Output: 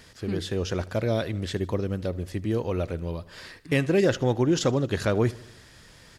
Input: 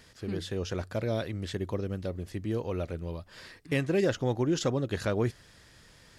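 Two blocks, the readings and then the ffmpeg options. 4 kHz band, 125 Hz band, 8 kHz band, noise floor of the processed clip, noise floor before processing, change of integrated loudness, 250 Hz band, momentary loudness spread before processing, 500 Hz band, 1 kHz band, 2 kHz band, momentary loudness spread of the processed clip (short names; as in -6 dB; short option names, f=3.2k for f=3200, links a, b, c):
+5.0 dB, +5.0 dB, +5.0 dB, -52 dBFS, -57 dBFS, +5.0 dB, +5.0 dB, 9 LU, +5.0 dB, +5.0 dB, +5.0 dB, 10 LU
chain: -af "aecho=1:1:77|154|231|308|385:0.0841|0.0496|0.0293|0.0173|0.0102,volume=5dB"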